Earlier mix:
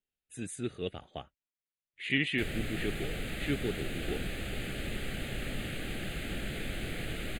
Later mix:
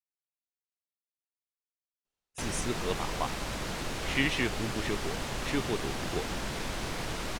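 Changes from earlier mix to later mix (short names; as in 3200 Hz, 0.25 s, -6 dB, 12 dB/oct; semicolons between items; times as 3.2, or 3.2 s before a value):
speech: entry +2.05 s; master: remove fixed phaser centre 2400 Hz, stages 4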